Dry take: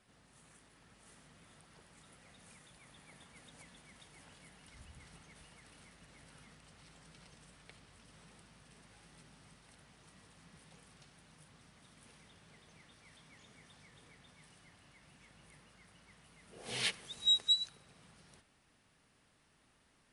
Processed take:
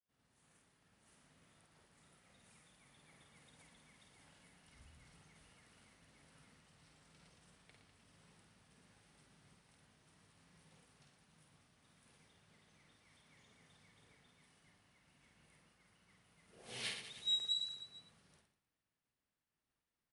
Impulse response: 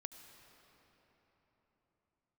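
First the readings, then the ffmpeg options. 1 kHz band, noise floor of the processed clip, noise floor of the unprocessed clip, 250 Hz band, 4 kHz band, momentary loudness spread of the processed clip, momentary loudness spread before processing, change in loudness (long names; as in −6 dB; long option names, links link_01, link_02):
−7.0 dB, below −85 dBFS, −71 dBFS, −7.0 dB, −6.5 dB, 18 LU, 14 LU, −7.0 dB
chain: -af "aecho=1:1:50|115|199.5|309.4|452.2:0.631|0.398|0.251|0.158|0.1,agate=range=-33dB:threshold=-58dB:ratio=3:detection=peak,volume=-9dB"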